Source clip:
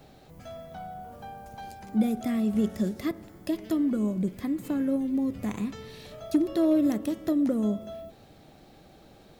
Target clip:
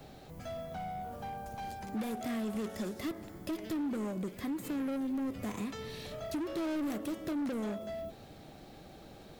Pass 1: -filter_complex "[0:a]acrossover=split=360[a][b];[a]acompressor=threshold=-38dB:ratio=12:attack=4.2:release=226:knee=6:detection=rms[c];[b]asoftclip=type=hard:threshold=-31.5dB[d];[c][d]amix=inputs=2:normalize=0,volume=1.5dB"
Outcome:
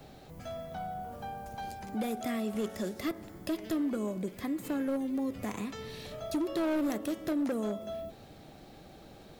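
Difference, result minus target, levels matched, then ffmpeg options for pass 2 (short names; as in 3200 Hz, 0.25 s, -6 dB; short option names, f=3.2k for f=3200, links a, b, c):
hard clip: distortion -6 dB
-filter_complex "[0:a]acrossover=split=360[a][b];[a]acompressor=threshold=-38dB:ratio=12:attack=4.2:release=226:knee=6:detection=rms[c];[b]asoftclip=type=hard:threshold=-40dB[d];[c][d]amix=inputs=2:normalize=0,volume=1.5dB"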